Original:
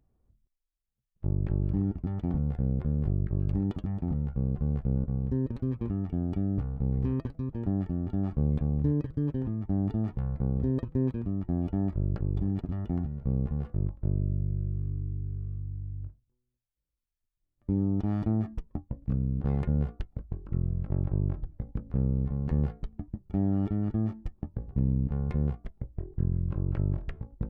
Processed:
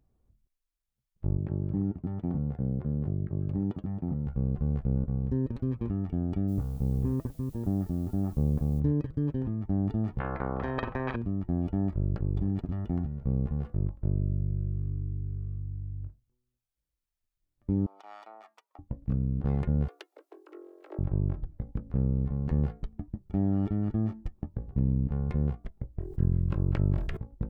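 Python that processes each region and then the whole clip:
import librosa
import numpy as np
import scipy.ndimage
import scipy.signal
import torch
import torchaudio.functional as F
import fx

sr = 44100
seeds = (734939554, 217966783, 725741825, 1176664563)

y = fx.chain(x, sr, fx.highpass(hz=98.0, slope=12),
    fx.high_shelf(hz=2100.0, db=-11.0), at=(1.37, 4.27))
y = fx.lowpass(y, sr, hz=1300.0, slope=12, at=(6.47, 8.79), fade=0.02)
y = fx.dmg_noise_colour(y, sr, seeds[0], colour='blue', level_db=-62.0, at=(6.47, 8.79), fade=0.02)
y = fx.chain(y, sr, fx.lowpass(hz=2000.0, slope=12),
    fx.doubler(ms=46.0, db=-11.0),
    fx.spectral_comp(ratio=4.0), at=(10.2, 11.16))
y = fx.chain(y, sr, fx.highpass(hz=750.0, slope=24),
    fx.notch(hz=1700.0, q=9.4), at=(17.86, 18.79))
y = fx.chain(y, sr, fx.steep_highpass(hz=310.0, slope=96),
    fx.high_shelf(hz=2200.0, db=9.5), at=(19.88, 20.99))
y = fx.chain(y, sr, fx.high_shelf(hz=2200.0, db=10.0),
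    fx.sustainer(db_per_s=50.0), at=(26.01, 27.17))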